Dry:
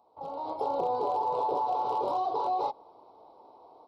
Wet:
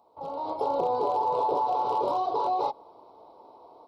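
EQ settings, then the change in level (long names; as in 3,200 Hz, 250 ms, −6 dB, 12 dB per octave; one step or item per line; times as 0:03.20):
notch filter 780 Hz, Q 14
+3.5 dB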